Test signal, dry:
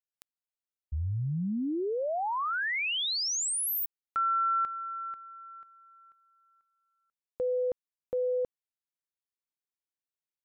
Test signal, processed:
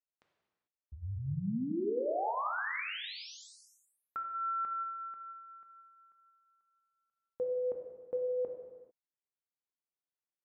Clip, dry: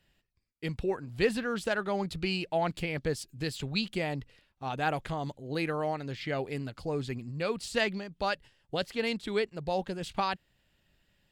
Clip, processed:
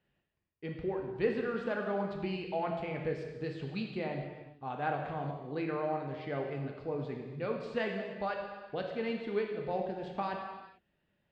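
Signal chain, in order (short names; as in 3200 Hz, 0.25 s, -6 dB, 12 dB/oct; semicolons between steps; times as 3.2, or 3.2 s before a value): HPF 190 Hz 6 dB/oct; tape spacing loss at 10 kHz 37 dB; non-linear reverb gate 0.47 s falling, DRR 1 dB; gain -2 dB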